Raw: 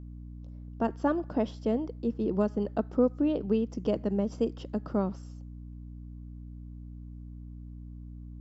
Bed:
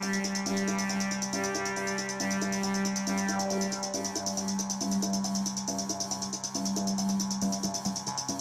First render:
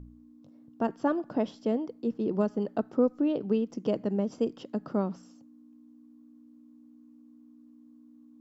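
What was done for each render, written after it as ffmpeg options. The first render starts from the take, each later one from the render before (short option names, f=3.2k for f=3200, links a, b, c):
-af "bandreject=f=60:t=h:w=4,bandreject=f=120:t=h:w=4,bandreject=f=180:t=h:w=4"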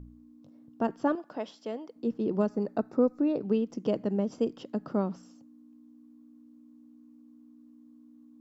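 -filter_complex "[0:a]asettb=1/sr,asplit=3[a][b][c];[a]atrim=end=1.154[d];[b]atrim=start=1.15:end=1.96,asetpts=PTS-STARTPTS,afade=t=in:d=0.004:c=qsin,afade=t=out:st=0.806:d=0.004:c=qsin,highpass=f=870:p=1[e];[c]atrim=start=1.956[f];[d][e]acrossfade=d=0.004:c1=hsin:c2=qsin[g];[g][f]acrossfade=d=0.004:c1=qsin:c2=hsin,asettb=1/sr,asplit=3[h][i][j];[h]atrim=end=2.494[k];[i]atrim=start=2.49:end=3.45,asetpts=PTS-STARTPTS,afade=t=in:d=0.004:c=qsin,afade=t=out:st=0.956:d=0.004:c=qsin,asuperstop=centerf=3100:order=4:qfactor=4.3[l];[j]atrim=start=3.446[m];[k][l]acrossfade=d=0.004:c1=hsin:c2=qsin[n];[n][m]acrossfade=d=0.004:c1=qsin:c2=hsin"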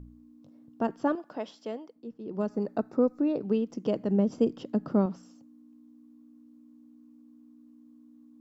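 -filter_complex "[0:a]asettb=1/sr,asplit=3[a][b][c];[a]atrim=end=4.094[d];[b]atrim=start=4.09:end=5.06,asetpts=PTS-STARTPTS,afade=t=in:d=0.004:c=qsin,afade=t=out:st=0.966:d=0.004:c=qsin,lowshelf=f=390:g=6.5[e];[c]atrim=start=5.056[f];[d][e]acrossfade=d=0.004:c1=hsin:c2=qsin[g];[g][f]acrossfade=d=0.004:c1=qsin:c2=hsin,asplit=3[h][i][j];[h]atrim=end=2.04,asetpts=PTS-STARTPTS,afade=t=out:st=1.72:d=0.32:silence=0.266073[k];[i]atrim=start=2.04:end=2.24,asetpts=PTS-STARTPTS,volume=-11.5dB[l];[j]atrim=start=2.24,asetpts=PTS-STARTPTS,afade=t=in:d=0.32:silence=0.266073[m];[k][l][m]concat=n=3:v=0:a=1"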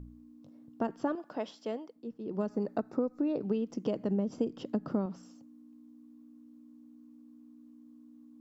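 -af "acompressor=threshold=-27dB:ratio=6"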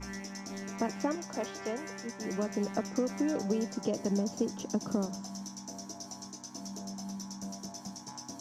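-filter_complex "[1:a]volume=-11.5dB[a];[0:a][a]amix=inputs=2:normalize=0"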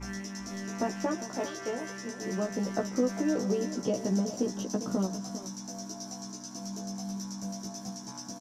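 -filter_complex "[0:a]asplit=2[a][b];[b]adelay=16,volume=-3dB[c];[a][c]amix=inputs=2:normalize=0,aecho=1:1:400:0.251"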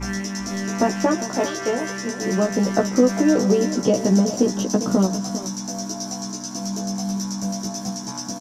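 -af "volume=11.5dB"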